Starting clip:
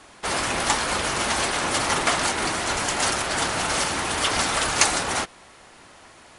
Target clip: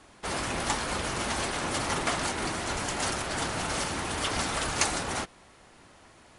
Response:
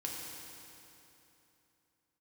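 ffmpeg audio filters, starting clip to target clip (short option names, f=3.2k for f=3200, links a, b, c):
-af "lowshelf=f=370:g=7,volume=-8dB"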